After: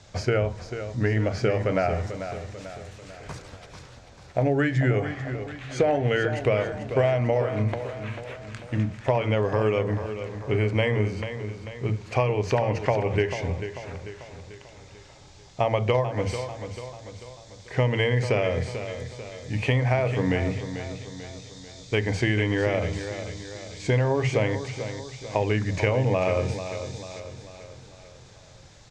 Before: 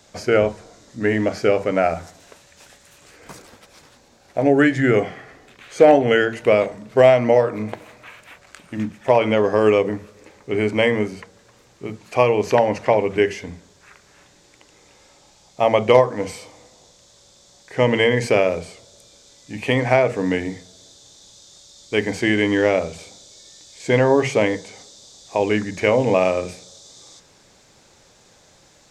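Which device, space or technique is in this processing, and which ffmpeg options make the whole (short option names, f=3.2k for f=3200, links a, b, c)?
jukebox: -af "lowpass=6.4k,lowshelf=f=160:t=q:w=1.5:g=9,acompressor=threshold=-20dB:ratio=5,aecho=1:1:442|884|1326|1768|2210:0.316|0.158|0.0791|0.0395|0.0198"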